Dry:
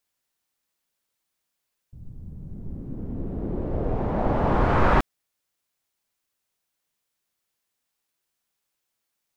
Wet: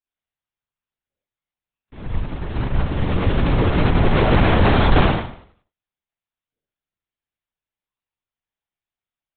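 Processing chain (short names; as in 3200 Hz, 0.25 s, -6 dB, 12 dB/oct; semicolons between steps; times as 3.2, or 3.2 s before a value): half-waves squared off; spectral noise reduction 21 dB; limiter -14.5 dBFS, peak gain reduction 8 dB; Schroeder reverb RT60 0.6 s, combs from 30 ms, DRR -7.5 dB; soft clip -10 dBFS, distortion -10 dB; LPC vocoder at 8 kHz whisper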